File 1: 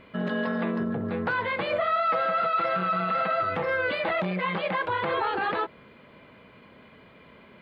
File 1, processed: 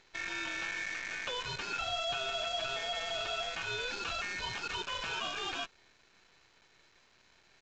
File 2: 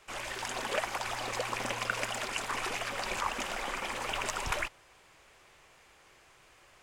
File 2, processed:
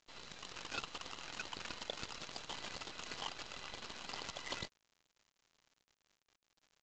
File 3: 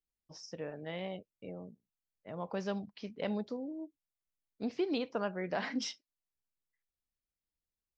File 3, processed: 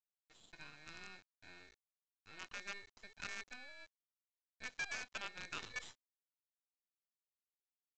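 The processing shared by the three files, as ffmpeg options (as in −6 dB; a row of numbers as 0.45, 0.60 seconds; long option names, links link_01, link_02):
-af "aeval=exprs='val(0)*sin(2*PI*2000*n/s)':channel_layout=same,acrusher=bits=6:dc=4:mix=0:aa=0.000001,aresample=16000,aresample=44100,volume=-7.5dB"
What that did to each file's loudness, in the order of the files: −9.0, −11.0, −8.5 LU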